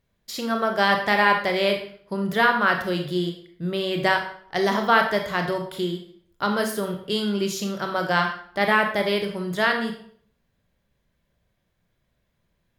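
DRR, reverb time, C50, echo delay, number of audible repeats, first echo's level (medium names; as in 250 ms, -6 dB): 3.5 dB, 0.60 s, 7.0 dB, no echo, no echo, no echo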